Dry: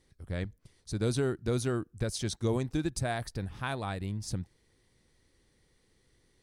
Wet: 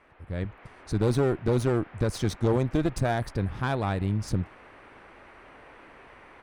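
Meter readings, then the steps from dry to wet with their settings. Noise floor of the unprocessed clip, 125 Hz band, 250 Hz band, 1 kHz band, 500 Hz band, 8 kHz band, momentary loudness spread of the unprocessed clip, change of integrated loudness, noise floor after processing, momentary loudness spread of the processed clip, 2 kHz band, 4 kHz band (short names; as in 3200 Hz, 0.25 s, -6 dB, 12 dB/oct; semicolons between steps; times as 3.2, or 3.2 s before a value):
-70 dBFS, +6.5 dB, +6.0 dB, +7.0 dB, +6.5 dB, -2.5 dB, 9 LU, +6.0 dB, -52 dBFS, 10 LU, +4.0 dB, 0.0 dB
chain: band noise 240–2400 Hz -58 dBFS; AGC gain up to 9 dB; one-sided clip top -29 dBFS, bottom -13.5 dBFS; high shelf 2700 Hz -11 dB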